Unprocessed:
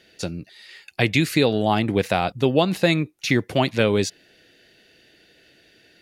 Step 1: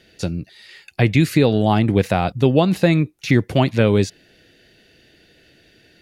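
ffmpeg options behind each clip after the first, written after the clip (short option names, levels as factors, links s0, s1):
-filter_complex "[0:a]acrossover=split=2400[s0][s1];[s0]lowshelf=f=200:g=9.5[s2];[s1]alimiter=limit=0.0631:level=0:latency=1:release=13[s3];[s2][s3]amix=inputs=2:normalize=0,volume=1.12"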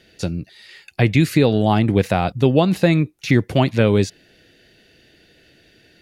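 -af anull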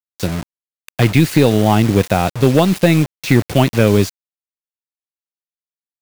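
-af "acrusher=bits=4:mix=0:aa=0.000001,aeval=exprs='0.891*(cos(1*acos(clip(val(0)/0.891,-1,1)))-cos(1*PI/2))+0.355*(cos(2*acos(clip(val(0)/0.891,-1,1)))-cos(2*PI/2))+0.158*(cos(4*acos(clip(val(0)/0.891,-1,1)))-cos(4*PI/2))':c=same,volume=1.41"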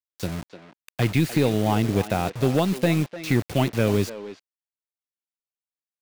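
-filter_complex "[0:a]asplit=2[s0][s1];[s1]adelay=300,highpass=300,lowpass=3400,asoftclip=type=hard:threshold=0.282,volume=0.316[s2];[s0][s2]amix=inputs=2:normalize=0,volume=0.355"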